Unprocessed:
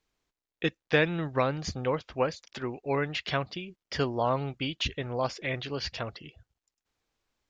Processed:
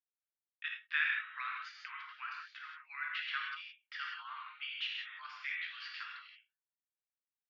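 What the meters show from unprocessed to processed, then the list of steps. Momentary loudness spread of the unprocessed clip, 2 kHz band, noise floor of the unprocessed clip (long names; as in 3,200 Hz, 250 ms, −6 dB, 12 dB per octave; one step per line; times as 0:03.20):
11 LU, −2.5 dB, below −85 dBFS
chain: Butterworth high-pass 1,300 Hz 48 dB per octave
high-frequency loss of the air 400 metres
reverb whose tail is shaped and stops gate 200 ms flat, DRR −1.5 dB
noise gate with hold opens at −48 dBFS
every ending faded ahead of time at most 240 dB per second
level −2 dB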